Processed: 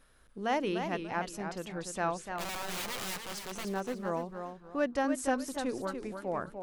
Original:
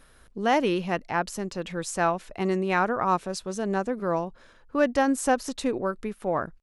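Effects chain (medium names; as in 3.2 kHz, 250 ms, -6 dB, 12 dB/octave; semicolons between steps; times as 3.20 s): 2.24–3.65 s: integer overflow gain 25 dB; de-hum 76.59 Hz, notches 6; modulated delay 292 ms, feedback 30%, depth 127 cents, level -7 dB; trim -8 dB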